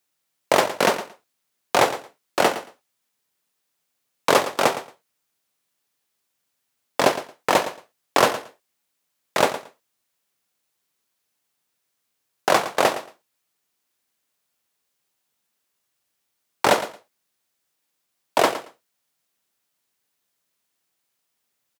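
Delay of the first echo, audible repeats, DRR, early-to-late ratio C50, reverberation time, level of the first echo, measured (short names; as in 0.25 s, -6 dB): 0.113 s, 2, none, none, none, -13.0 dB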